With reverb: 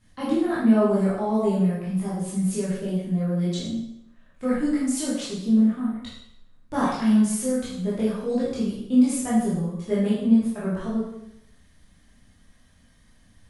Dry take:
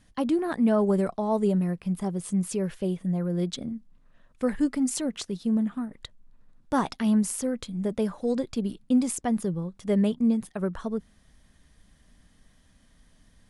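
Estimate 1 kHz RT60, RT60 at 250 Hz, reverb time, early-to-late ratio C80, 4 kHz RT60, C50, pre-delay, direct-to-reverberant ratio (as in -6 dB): 0.75 s, 0.80 s, 0.75 s, 4.0 dB, 0.70 s, 0.0 dB, 7 ms, -9.5 dB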